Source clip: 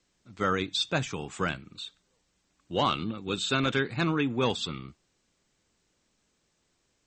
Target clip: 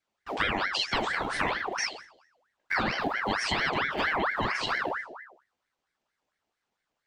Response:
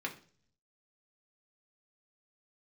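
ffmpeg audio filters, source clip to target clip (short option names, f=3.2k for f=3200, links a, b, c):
-filter_complex "[0:a]agate=range=-24dB:threshold=-60dB:ratio=16:detection=peak,acrossover=split=230|1100[a][b][c];[a]acrusher=bits=4:mode=log:mix=0:aa=0.000001[d];[d][b][c]amix=inputs=3:normalize=0,lowshelf=f=130:g=11[e];[1:a]atrim=start_sample=2205[f];[e][f]afir=irnorm=-1:irlink=0,asplit=2[g][h];[h]alimiter=limit=-18.5dB:level=0:latency=1,volume=0dB[i];[g][i]amix=inputs=2:normalize=0,acompressor=threshold=-32dB:ratio=10,aeval=exprs='val(0)*sin(2*PI*1200*n/s+1200*0.6/4.4*sin(2*PI*4.4*n/s))':c=same,volume=9dB"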